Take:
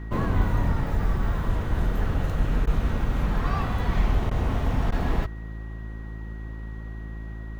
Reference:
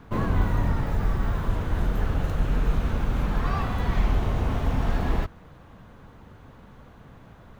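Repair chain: de-hum 54.4 Hz, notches 7; band-stop 1.9 kHz, Q 30; interpolate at 2.66/4.30/4.91 s, 10 ms

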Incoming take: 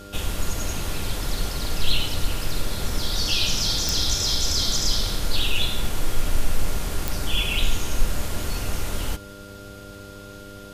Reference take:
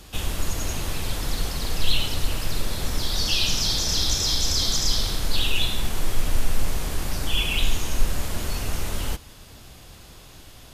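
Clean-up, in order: de-click; de-hum 100 Hz, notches 6; band-stop 1.4 kHz, Q 30

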